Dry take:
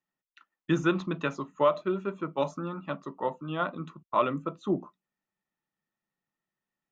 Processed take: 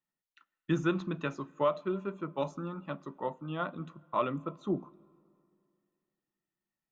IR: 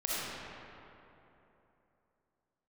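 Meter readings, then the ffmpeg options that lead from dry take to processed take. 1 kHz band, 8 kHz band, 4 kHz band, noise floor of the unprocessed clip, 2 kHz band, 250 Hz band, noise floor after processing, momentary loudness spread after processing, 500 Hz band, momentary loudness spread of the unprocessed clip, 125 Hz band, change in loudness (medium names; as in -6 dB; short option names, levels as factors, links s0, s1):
-5.0 dB, no reading, -5.5 dB, under -85 dBFS, -5.0 dB, -3.5 dB, under -85 dBFS, 9 LU, -4.5 dB, 10 LU, -2.0 dB, -4.5 dB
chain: -filter_complex "[0:a]lowshelf=f=190:g=5.5,asplit=2[s0][s1];[1:a]atrim=start_sample=2205,asetrate=57330,aresample=44100[s2];[s1][s2]afir=irnorm=-1:irlink=0,volume=0.0355[s3];[s0][s3]amix=inputs=2:normalize=0,volume=0.531"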